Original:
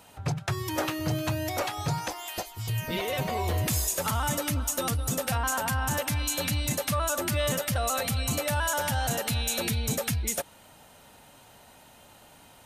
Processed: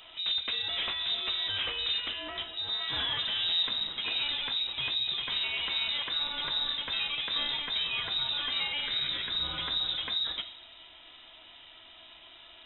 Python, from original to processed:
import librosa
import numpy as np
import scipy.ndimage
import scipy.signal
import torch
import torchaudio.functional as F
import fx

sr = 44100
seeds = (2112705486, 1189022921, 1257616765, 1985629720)

p1 = fx.lower_of_two(x, sr, delay_ms=0.51, at=(8.86, 9.42), fade=0.02)
p2 = fx.rider(p1, sr, range_db=10, speed_s=2.0)
p3 = p1 + (p2 * librosa.db_to_amplitude(3.0))
p4 = 10.0 ** (-23.0 / 20.0) * np.tanh(p3 / 10.0 ** (-23.0 / 20.0))
p5 = fx.room_shoebox(p4, sr, seeds[0], volume_m3=79.0, walls='mixed', distance_m=0.31)
p6 = fx.freq_invert(p5, sr, carrier_hz=3800)
y = p6 * librosa.db_to_amplitude(-6.5)